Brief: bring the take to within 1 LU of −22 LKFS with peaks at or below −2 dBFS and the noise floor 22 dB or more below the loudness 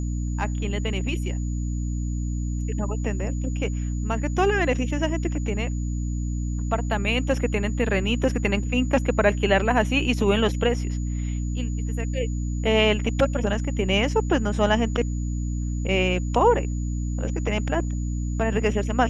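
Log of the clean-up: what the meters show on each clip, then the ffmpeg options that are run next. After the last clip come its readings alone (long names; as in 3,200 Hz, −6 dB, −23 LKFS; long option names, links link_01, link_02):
mains hum 60 Hz; hum harmonics up to 300 Hz; level of the hum −24 dBFS; interfering tone 6,900 Hz; level of the tone −45 dBFS; integrated loudness −24.5 LKFS; sample peak −5.5 dBFS; target loudness −22.0 LKFS
→ -af "bandreject=frequency=60:width_type=h:width=6,bandreject=frequency=120:width_type=h:width=6,bandreject=frequency=180:width_type=h:width=6,bandreject=frequency=240:width_type=h:width=6,bandreject=frequency=300:width_type=h:width=6"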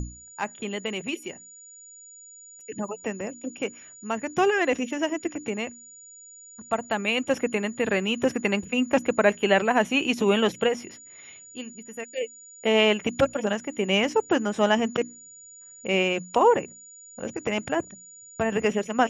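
mains hum none found; interfering tone 6,900 Hz; level of the tone −45 dBFS
→ -af "bandreject=frequency=6900:width=30"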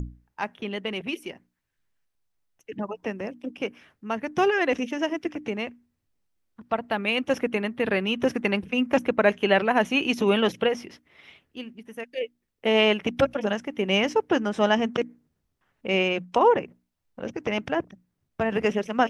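interfering tone none found; integrated loudness −25.5 LKFS; sample peak −6.5 dBFS; target loudness −22.0 LKFS
→ -af "volume=3.5dB"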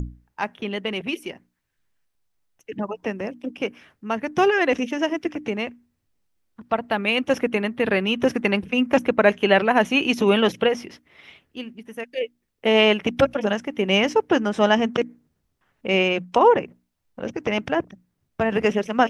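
integrated loudness −22.0 LKFS; sample peak −3.0 dBFS; background noise floor −74 dBFS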